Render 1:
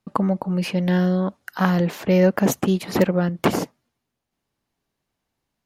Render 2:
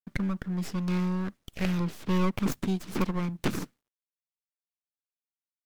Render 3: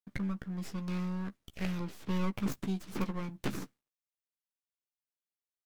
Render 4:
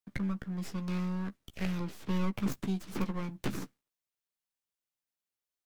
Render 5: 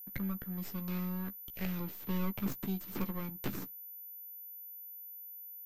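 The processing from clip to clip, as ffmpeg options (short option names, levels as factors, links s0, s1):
-filter_complex "[0:a]acrusher=bits=10:mix=0:aa=0.000001,acrossover=split=410[s0][s1];[s1]aeval=exprs='abs(val(0))':c=same[s2];[s0][s2]amix=inputs=2:normalize=0,volume=0.422"
-filter_complex "[0:a]asplit=2[s0][s1];[s1]adelay=15,volume=0.355[s2];[s0][s2]amix=inputs=2:normalize=0,volume=0.447"
-filter_complex "[0:a]acrossover=split=250[s0][s1];[s1]acompressor=threshold=0.0141:ratio=2[s2];[s0][s2]amix=inputs=2:normalize=0,volume=1.19"
-af "aeval=exprs='val(0)+0.00794*sin(2*PI*14000*n/s)':c=same,volume=0.668"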